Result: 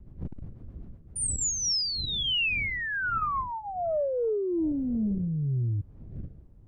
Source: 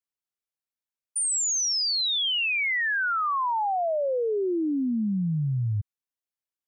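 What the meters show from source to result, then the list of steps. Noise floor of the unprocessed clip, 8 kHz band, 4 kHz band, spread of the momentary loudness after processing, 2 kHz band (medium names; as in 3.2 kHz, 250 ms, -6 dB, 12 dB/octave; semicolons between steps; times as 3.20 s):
under -85 dBFS, -4.0 dB, -3.0 dB, 19 LU, -4.0 dB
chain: wind noise 100 Hz -35 dBFS; rotary cabinet horn 8 Hz, later 1.2 Hz, at 0.95 s; transformer saturation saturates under 280 Hz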